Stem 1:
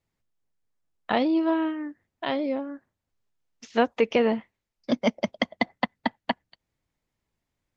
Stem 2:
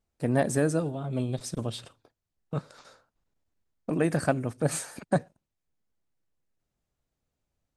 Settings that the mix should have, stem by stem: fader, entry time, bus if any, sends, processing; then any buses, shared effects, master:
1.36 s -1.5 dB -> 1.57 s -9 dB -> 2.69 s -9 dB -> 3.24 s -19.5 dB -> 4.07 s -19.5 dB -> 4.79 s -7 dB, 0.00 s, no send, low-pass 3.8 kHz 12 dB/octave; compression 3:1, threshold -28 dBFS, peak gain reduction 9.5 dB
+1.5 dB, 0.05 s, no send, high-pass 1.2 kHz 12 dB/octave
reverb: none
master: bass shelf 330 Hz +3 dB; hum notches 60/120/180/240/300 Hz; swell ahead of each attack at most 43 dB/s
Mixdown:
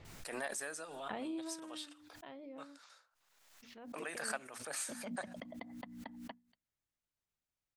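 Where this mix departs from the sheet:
stem 1 -1.5 dB -> -13.5 dB; stem 2 +1.5 dB -> -7.0 dB

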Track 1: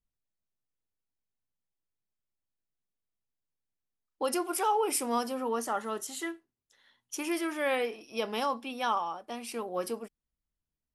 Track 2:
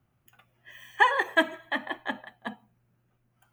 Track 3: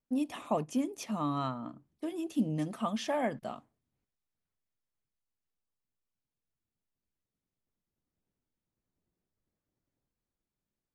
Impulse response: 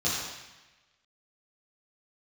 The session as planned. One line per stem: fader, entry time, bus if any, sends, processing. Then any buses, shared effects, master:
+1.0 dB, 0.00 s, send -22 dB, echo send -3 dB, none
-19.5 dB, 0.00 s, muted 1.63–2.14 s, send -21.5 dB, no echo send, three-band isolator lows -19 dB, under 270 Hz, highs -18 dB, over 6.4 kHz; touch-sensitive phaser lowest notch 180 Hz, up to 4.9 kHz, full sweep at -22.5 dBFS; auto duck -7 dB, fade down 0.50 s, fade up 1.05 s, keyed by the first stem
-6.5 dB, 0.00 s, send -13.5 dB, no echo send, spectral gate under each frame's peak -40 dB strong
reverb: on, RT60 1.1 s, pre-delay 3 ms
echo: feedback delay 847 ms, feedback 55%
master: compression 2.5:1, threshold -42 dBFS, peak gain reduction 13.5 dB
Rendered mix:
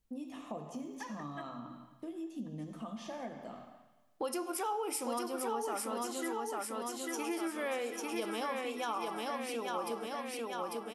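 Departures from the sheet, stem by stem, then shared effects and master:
stem 1 +1.0 dB -> +8.0 dB; stem 2: missing three-band isolator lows -19 dB, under 270 Hz, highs -18 dB, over 6.4 kHz; stem 3: missing spectral gate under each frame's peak -40 dB strong

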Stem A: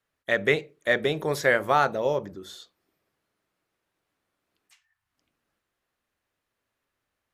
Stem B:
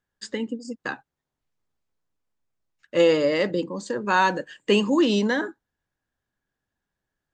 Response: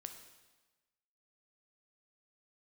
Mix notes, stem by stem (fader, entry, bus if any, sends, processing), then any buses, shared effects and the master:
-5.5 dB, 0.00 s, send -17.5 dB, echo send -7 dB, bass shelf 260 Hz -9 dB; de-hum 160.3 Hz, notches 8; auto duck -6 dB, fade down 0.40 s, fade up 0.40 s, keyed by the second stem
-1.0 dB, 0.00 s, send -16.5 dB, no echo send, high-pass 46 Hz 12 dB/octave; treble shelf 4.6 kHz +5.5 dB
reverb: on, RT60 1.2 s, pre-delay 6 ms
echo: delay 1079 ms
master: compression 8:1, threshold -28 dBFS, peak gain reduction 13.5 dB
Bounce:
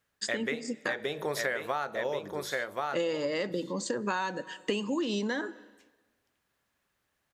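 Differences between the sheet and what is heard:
stem A -5.5 dB -> +0.5 dB; reverb return +7.0 dB

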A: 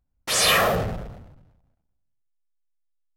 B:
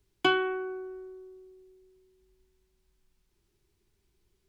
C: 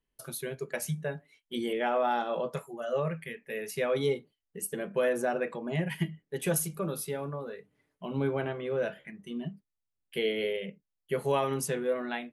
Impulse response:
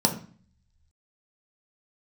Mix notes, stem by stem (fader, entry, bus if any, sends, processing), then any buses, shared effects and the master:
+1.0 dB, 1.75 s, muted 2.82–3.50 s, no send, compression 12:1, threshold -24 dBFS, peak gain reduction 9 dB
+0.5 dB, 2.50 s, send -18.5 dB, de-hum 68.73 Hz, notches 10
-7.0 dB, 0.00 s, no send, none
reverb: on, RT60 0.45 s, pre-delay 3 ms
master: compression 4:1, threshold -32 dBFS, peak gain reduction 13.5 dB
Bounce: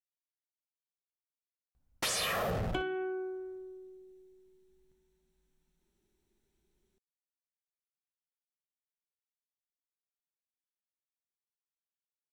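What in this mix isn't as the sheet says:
stem B +0.5 dB -> -6.0 dB; stem C: muted

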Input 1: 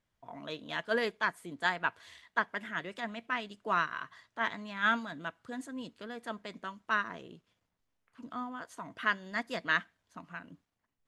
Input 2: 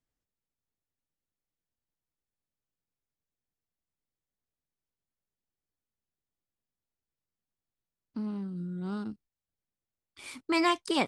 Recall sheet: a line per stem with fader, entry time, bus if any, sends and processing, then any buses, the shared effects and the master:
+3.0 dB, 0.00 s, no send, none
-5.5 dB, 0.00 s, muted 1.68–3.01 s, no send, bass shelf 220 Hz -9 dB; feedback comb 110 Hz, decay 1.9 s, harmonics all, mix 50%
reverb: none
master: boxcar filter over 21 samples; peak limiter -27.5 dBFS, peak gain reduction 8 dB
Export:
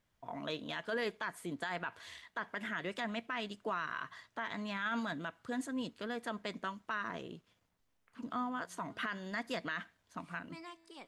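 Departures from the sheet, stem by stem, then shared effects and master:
stem 2 -5.5 dB -> -17.5 dB; master: missing boxcar filter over 21 samples

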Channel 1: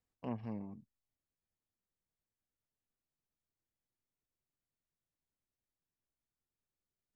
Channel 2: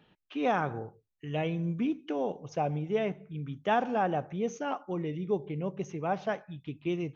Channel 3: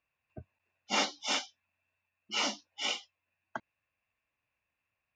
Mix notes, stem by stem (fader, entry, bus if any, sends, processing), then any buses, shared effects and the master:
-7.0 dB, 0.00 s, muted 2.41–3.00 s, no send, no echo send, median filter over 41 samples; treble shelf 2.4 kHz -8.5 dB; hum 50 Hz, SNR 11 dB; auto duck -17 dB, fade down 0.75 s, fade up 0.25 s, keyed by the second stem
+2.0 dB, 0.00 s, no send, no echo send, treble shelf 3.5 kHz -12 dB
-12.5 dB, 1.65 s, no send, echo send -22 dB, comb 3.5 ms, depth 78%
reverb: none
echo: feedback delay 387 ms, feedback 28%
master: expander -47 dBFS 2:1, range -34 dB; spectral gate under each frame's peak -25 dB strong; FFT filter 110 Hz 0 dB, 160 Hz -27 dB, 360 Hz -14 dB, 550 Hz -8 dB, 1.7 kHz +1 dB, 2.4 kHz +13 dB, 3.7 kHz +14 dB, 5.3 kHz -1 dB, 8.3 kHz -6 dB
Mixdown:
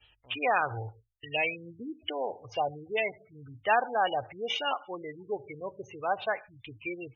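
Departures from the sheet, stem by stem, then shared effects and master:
stem 1 -7.0 dB -> +2.5 dB; stem 2 +2.0 dB -> +8.0 dB

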